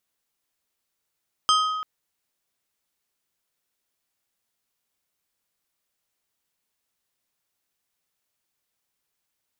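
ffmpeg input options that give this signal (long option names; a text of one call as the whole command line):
ffmpeg -f lavfi -i "aevalsrc='0.158*pow(10,-3*t/1.58)*sin(2*PI*1260*t)+0.1*pow(10,-3*t/0.832)*sin(2*PI*3150*t)+0.0631*pow(10,-3*t/0.599)*sin(2*PI*5040*t)+0.0398*pow(10,-3*t/0.512)*sin(2*PI*6300*t)+0.0251*pow(10,-3*t/0.426)*sin(2*PI*8190*t)':duration=0.34:sample_rate=44100" out.wav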